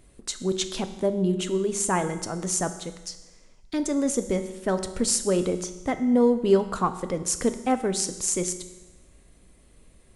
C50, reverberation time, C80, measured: 11.5 dB, 1.1 s, 13.5 dB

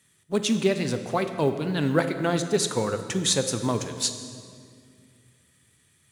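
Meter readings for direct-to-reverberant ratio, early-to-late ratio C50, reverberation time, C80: 8.0 dB, 9.0 dB, 2.2 s, 10.0 dB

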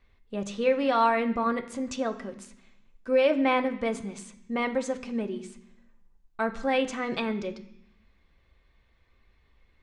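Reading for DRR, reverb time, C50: 4.5 dB, 0.75 s, 13.5 dB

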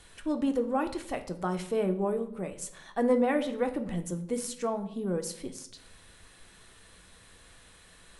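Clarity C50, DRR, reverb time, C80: 13.0 dB, 6.0 dB, 0.70 s, 16.0 dB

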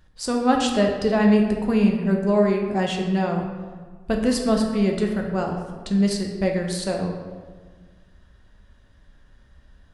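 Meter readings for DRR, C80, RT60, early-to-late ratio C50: 1.0 dB, 6.5 dB, 1.6 s, 4.0 dB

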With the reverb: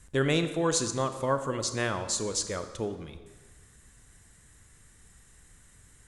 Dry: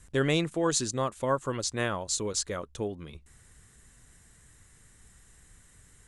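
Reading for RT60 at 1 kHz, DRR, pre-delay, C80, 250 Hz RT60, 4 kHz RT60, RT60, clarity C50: 1.4 s, 9.0 dB, 29 ms, 11.5 dB, 1.4 s, 1.1 s, 1.4 s, 10.0 dB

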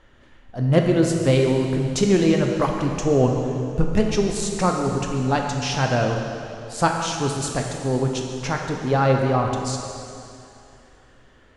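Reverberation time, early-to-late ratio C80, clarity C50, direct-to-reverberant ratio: 2.7 s, 4.0 dB, 3.0 dB, 1.5 dB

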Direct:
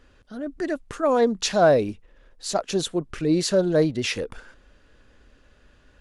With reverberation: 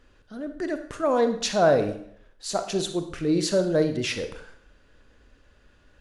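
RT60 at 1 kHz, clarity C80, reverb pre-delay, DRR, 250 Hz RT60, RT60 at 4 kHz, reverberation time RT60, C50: 0.65 s, 13.0 dB, 34 ms, 8.0 dB, 0.60 s, 0.55 s, 0.65 s, 9.5 dB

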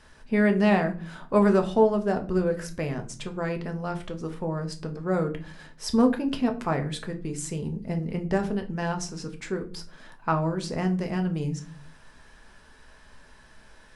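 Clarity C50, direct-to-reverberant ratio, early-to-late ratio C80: 14.0 dB, 4.5 dB, 19.0 dB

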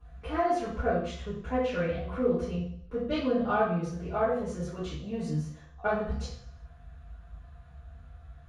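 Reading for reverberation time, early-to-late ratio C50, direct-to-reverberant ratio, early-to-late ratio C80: 0.60 s, 1.5 dB, −13.0 dB, 5.5 dB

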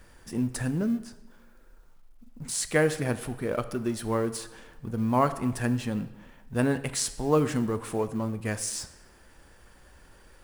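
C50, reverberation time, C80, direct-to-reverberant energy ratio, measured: 14.0 dB, 1.1 s, 15.5 dB, 11.0 dB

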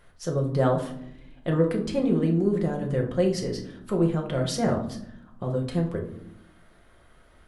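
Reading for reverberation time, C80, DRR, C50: non-exponential decay, 12.5 dB, 1.0 dB, 8.0 dB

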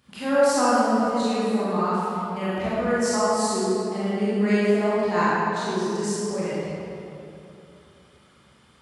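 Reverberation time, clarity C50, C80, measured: 2.9 s, −6.0 dB, −3.0 dB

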